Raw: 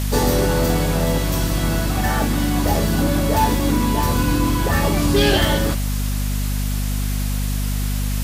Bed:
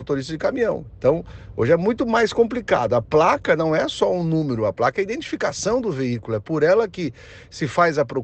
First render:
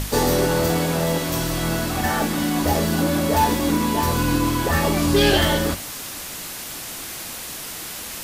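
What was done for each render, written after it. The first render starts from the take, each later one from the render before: hum notches 50/100/150/200/250 Hz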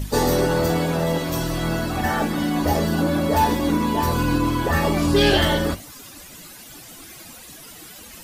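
noise reduction 13 dB, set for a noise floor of -33 dBFS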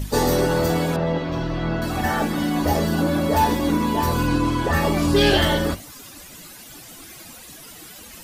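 0.96–1.82 s: distance through air 230 m; 4.27–4.74 s: low-pass 10 kHz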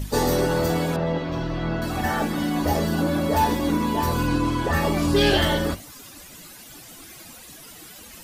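trim -2 dB

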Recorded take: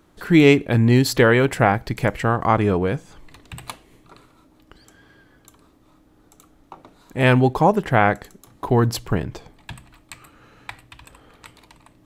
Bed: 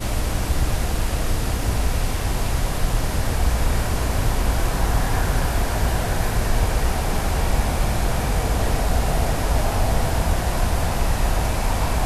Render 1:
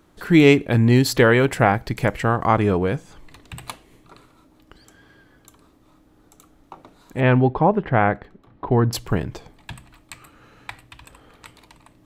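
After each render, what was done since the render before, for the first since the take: 7.20–8.93 s: distance through air 390 m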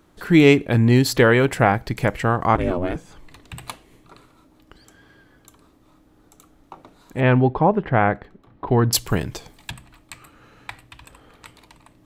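2.55–2.96 s: ring modulator 180 Hz; 8.67–9.71 s: treble shelf 3.2 kHz +12 dB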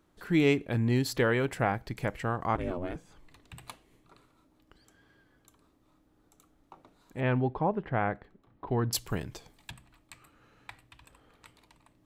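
trim -11.5 dB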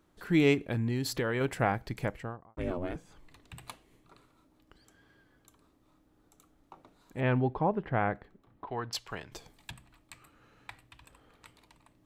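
0.54–1.41 s: compression, threshold -26 dBFS; 1.94–2.57 s: studio fade out; 8.64–9.32 s: three-band isolator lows -13 dB, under 550 Hz, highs -17 dB, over 5.7 kHz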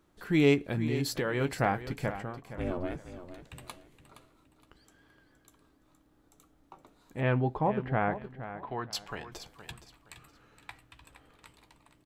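doubling 14 ms -11.5 dB; feedback delay 468 ms, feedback 29%, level -12.5 dB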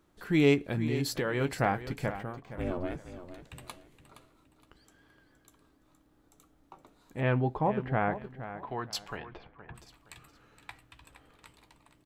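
2.17–2.62 s: decimation joined by straight lines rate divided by 4×; 9.16–9.74 s: low-pass 3.8 kHz -> 1.7 kHz 24 dB/octave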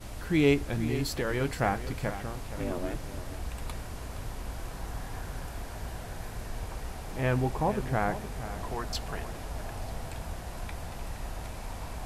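add bed -17.5 dB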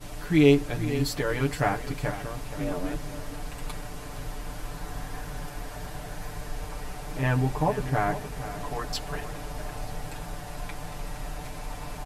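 hum notches 60/120 Hz; comb 6.8 ms, depth 95%

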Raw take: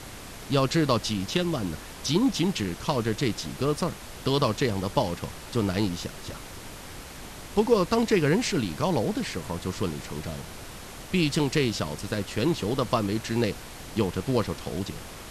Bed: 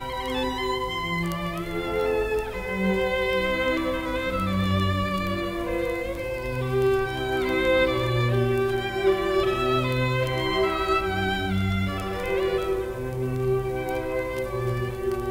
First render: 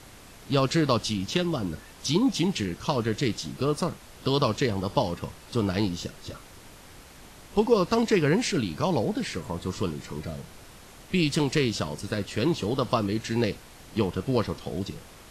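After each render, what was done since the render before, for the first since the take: noise print and reduce 7 dB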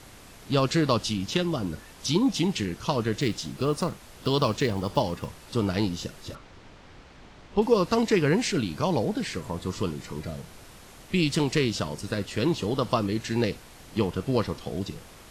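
3.21–5.28 s: block-companded coder 7-bit; 6.35–7.62 s: distance through air 140 m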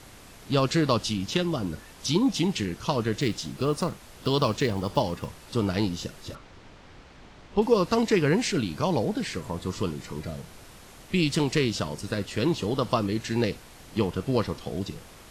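no audible change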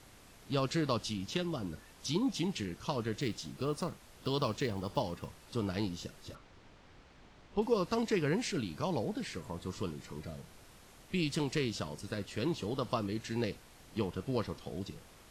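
trim -9 dB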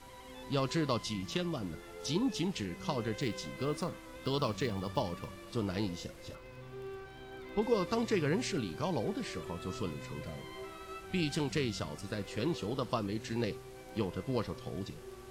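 add bed -22.5 dB

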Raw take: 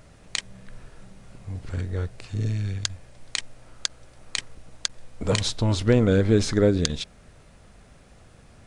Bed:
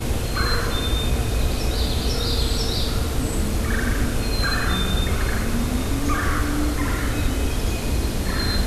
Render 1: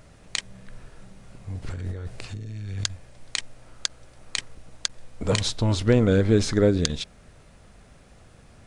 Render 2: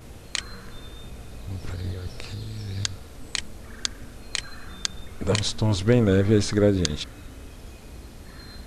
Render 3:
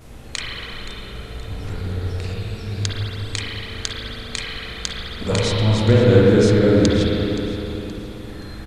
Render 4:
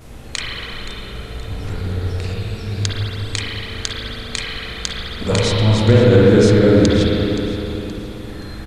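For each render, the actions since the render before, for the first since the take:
1.62–2.84 s: compressor with a negative ratio -32 dBFS
add bed -20 dB
feedback delay 523 ms, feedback 42%, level -16 dB; spring tank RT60 3.3 s, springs 38/50/55 ms, chirp 20 ms, DRR -5.5 dB
trim +3 dB; peak limiter -1 dBFS, peak gain reduction 3 dB

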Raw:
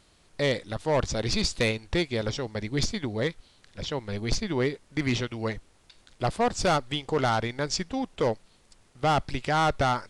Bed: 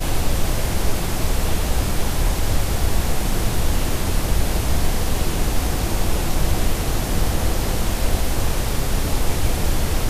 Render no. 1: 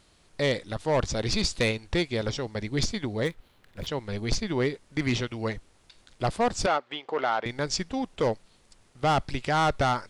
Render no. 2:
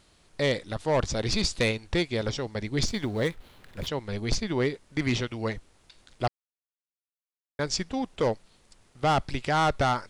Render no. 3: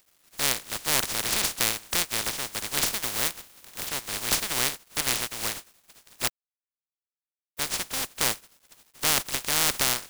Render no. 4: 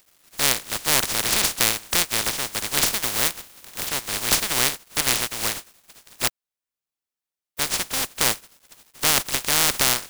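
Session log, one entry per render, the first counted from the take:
3.25–3.87 s: median filter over 9 samples; 6.66–7.46 s: band-pass 440–2800 Hz
2.86–3.89 s: companding laws mixed up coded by mu; 6.28–7.59 s: mute
spectral contrast reduction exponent 0.12; bit crusher 9-bit
trim +5 dB; peak limiter -1 dBFS, peak gain reduction 2 dB

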